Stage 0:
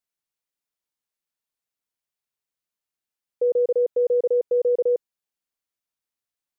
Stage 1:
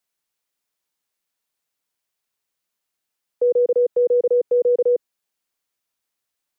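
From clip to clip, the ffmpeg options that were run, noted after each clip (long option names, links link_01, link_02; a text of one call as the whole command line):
ffmpeg -i in.wav -filter_complex "[0:a]lowshelf=frequency=190:gain=-5,acrossover=split=340|370[link_01][link_02][link_03];[link_03]alimiter=level_in=5.5dB:limit=-24dB:level=0:latency=1:release=49,volume=-5.5dB[link_04];[link_01][link_02][link_04]amix=inputs=3:normalize=0,volume=8dB" out.wav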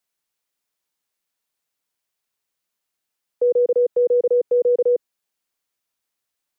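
ffmpeg -i in.wav -af anull out.wav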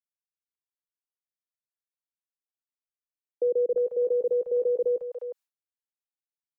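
ffmpeg -i in.wav -filter_complex "[0:a]agate=range=-33dB:threshold=-32dB:ratio=3:detection=peak,acrossover=split=180|670[link_01][link_02][link_03];[link_01]adelay=50[link_04];[link_03]adelay=360[link_05];[link_04][link_02][link_05]amix=inputs=3:normalize=0,volume=-4.5dB" out.wav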